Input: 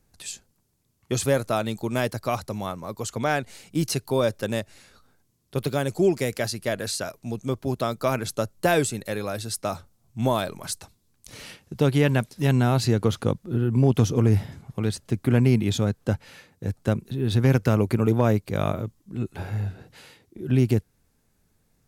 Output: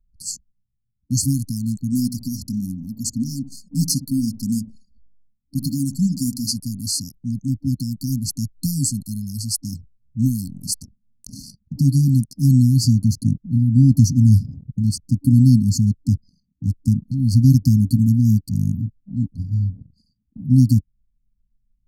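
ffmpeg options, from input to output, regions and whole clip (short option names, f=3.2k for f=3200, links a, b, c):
-filter_complex "[0:a]asettb=1/sr,asplit=3[a][b][c];[a]atrim=end=1.924[d];[b]atrim=start=1.92:end=6.56,asetpts=PTS-STARTPTS,afade=t=in:d=0.004:c=qsin,afade=t=out:st=4.636:d=0.004:c=qsin,aecho=1:1:4.2:0.49,atrim=end_sample=204624,asplit=2[e][f];[f]adelay=64,lowpass=f=2k:p=1,volume=-13dB,asplit=2[g][h];[h]adelay=64,lowpass=f=2k:p=1,volume=0.31,asplit=2[i][j];[j]adelay=64,lowpass=f=2k:p=1,volume=0.31[k];[e][g][i][k]amix=inputs=4:normalize=0,atrim=end_sample=204624[l];[c]atrim=start=6.556[m];[d][l]acrossfade=d=0.004:c1=hsin:c2=qsin[n];[n][m]acrossfade=d=0.004:c1=qsin:c2=hsin,asettb=1/sr,asplit=3[o][p][q];[o]atrim=end=10.664[r];[p]atrim=start=10.66:end=11.42,asetpts=PTS-STARTPTS,afade=t=in:d=0.004:c=qsin,afade=t=out:st=0.756:d=0.004:c=qsin,equalizer=f=230:w=1.6:g=10,bandreject=f=350.3:t=h:w=4,bandreject=f=700.6:t=h:w=4,bandreject=f=1.0509k:t=h:w=4,bandreject=f=1.4012k:t=h:w=4,bandreject=f=1.7515k:t=h:w=4,bandreject=f=2.1018k:t=h:w=4,bandreject=f=2.4521k:t=h:w=4,bandreject=f=2.8024k:t=h:w=4,bandreject=f=3.1527k:t=h:w=4,bandreject=f=3.503k:t=h:w=4,bandreject=f=3.8533k:t=h:w=4,bandreject=f=4.2036k:t=h:w=4,bandreject=f=4.5539k:t=h:w=4,bandreject=f=4.9042k:t=h:w=4,bandreject=f=5.2545k:t=h:w=4[s];[q]atrim=start=11.416[t];[r][s]acrossfade=d=0.004:c1=hsin:c2=qsin[u];[u][t]acrossfade=d=0.004:c1=qsin:c2=hsin,afftfilt=real='re*(1-between(b*sr/4096,290,4200))':imag='im*(1-between(b*sr/4096,290,4200))':win_size=4096:overlap=0.75,anlmdn=0.0251,volume=7.5dB"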